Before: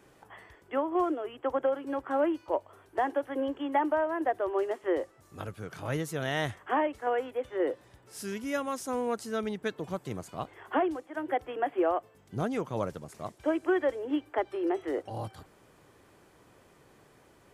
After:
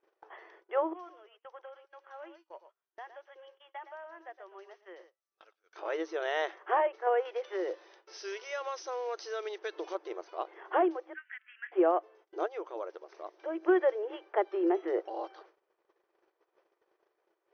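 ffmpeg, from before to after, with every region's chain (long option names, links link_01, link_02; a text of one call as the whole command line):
ffmpeg -i in.wav -filter_complex "[0:a]asettb=1/sr,asplit=3[link_01][link_02][link_03];[link_01]atrim=end=0.934[link_04];[link_02]atrim=start=0.93:end=5.76,asetpts=PTS-STARTPTS,afade=type=in:duration=0.004:curve=qsin,afade=type=out:start_time=4.826:duration=0.004:curve=qsin,aderivative,aecho=1:1:115:0.282,atrim=end_sample=213003[link_05];[link_03]atrim=start=5.756[link_06];[link_04][link_05]acrossfade=duration=0.004:curve1=hsin:curve2=qsin[link_07];[link_07][link_06]acrossfade=duration=0.004:curve1=qsin:curve2=hsin,asettb=1/sr,asplit=3[link_08][link_09][link_10];[link_08]atrim=end=7.254[link_11];[link_09]atrim=start=7.25:end=9.95,asetpts=PTS-STARTPTS,afade=type=in:duration=0.004:curve=qsin,afade=type=out:start_time=2.696:duration=0.004:curve=qsin,acrusher=bits=6:mode=log:mix=0:aa=0.000001,highshelf=frequency=2200:gain=11.5,acompressor=threshold=-31dB:ratio=5:attack=3.2:release=140:knee=1:detection=peak[link_12];[link_10]atrim=start=9.946[link_13];[link_11][link_12]acrossfade=duration=0.004:curve1=hsin:curve2=qsin[link_14];[link_14][link_13]acrossfade=duration=0.004:curve1=qsin:curve2=hsin,asettb=1/sr,asplit=3[link_15][link_16][link_17];[link_15]atrim=end=11.144[link_18];[link_16]atrim=start=11.14:end=11.72,asetpts=PTS-STARTPTS,afade=type=in:duration=0.004:curve=qsin,afade=type=out:start_time=0.576:duration=0.004:curve=qsin,asuperpass=centerf=2100:order=8:qfactor=1.5,aecho=1:1:4.7:0.34,atrim=end_sample=25578[link_19];[link_17]atrim=start=11.716[link_20];[link_18][link_19]acrossfade=duration=0.004:curve1=hsin:curve2=qsin[link_21];[link_21][link_20]acrossfade=duration=0.004:curve1=qsin:curve2=hsin,asettb=1/sr,asplit=3[link_22][link_23][link_24];[link_22]atrim=end=12.464[link_25];[link_23]atrim=start=12.46:end=13.63,asetpts=PTS-STARTPTS,afade=type=in:duration=0.004:curve=qsin,afade=type=out:start_time=1.166:duration=0.004:curve=qsin,lowpass=9400,acompressor=threshold=-45dB:ratio=1.5:attack=3.2:release=140:knee=1:detection=peak[link_26];[link_24]atrim=start=13.626[link_27];[link_25][link_26]acrossfade=duration=0.004:curve1=hsin:curve2=qsin[link_28];[link_28][link_27]acrossfade=duration=0.004:curve1=qsin:curve2=hsin,afftfilt=real='re*between(b*sr/4096,320,6300)':imag='im*between(b*sr/4096,320,6300)':win_size=4096:overlap=0.75,agate=range=-21dB:threshold=-58dB:ratio=16:detection=peak,highshelf=frequency=2300:gain=-9.5,volume=2dB" out.wav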